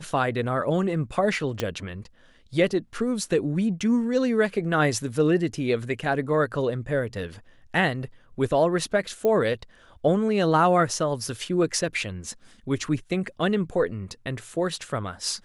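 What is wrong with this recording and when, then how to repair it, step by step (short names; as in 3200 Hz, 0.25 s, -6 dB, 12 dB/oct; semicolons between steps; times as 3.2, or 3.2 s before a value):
1.6 pop -11 dBFS
9.25 pop -14 dBFS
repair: de-click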